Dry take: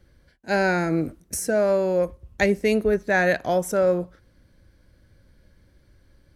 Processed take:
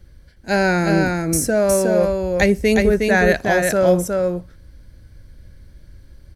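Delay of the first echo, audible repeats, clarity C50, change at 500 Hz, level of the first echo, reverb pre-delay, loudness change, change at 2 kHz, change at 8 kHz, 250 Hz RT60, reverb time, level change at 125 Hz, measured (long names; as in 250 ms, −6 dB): 363 ms, 1, no reverb audible, +5.0 dB, −3.5 dB, no reverb audible, +5.5 dB, +5.5 dB, +9.0 dB, no reverb audible, no reverb audible, +8.5 dB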